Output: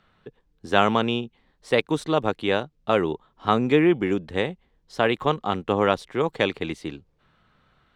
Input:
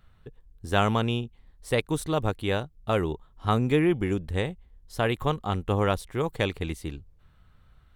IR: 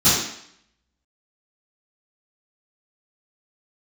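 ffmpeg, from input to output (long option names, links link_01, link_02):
-filter_complex "[0:a]acrossover=split=160 6400:gain=0.112 1 0.112[link_01][link_02][link_03];[link_01][link_02][link_03]amix=inputs=3:normalize=0,volume=5dB"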